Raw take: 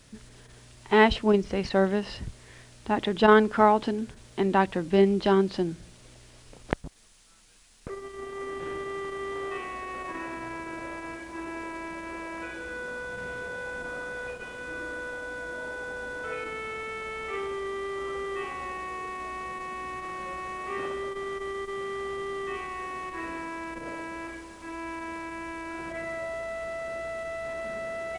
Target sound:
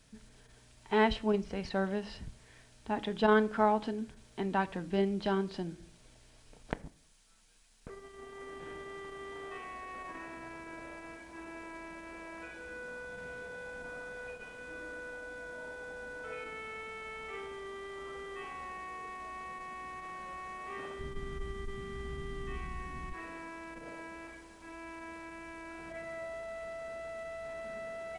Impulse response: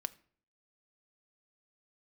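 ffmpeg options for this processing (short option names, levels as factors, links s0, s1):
-filter_complex "[0:a]asplit=3[s0][s1][s2];[s0]afade=t=out:st=20.99:d=0.02[s3];[s1]asubboost=boost=10.5:cutoff=170,afade=t=in:st=20.99:d=0.02,afade=t=out:st=23.13:d=0.02[s4];[s2]afade=t=in:st=23.13:d=0.02[s5];[s3][s4][s5]amix=inputs=3:normalize=0[s6];[1:a]atrim=start_sample=2205[s7];[s6][s7]afir=irnorm=-1:irlink=0,volume=0.447"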